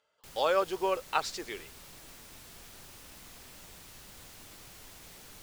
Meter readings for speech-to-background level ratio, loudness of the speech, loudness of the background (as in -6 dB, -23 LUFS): 18.0 dB, -31.0 LUFS, -49.0 LUFS